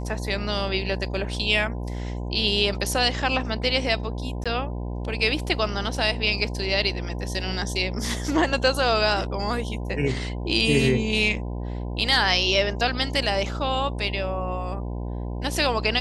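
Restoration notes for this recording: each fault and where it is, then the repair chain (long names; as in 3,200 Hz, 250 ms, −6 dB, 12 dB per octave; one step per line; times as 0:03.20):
mains buzz 60 Hz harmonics 17 −30 dBFS
0:04.44–0:04.46: drop-out 16 ms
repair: hum removal 60 Hz, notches 17
repair the gap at 0:04.44, 16 ms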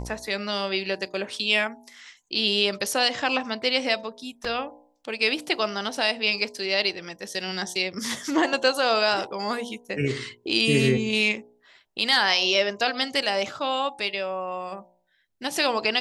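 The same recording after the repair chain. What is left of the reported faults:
none of them is left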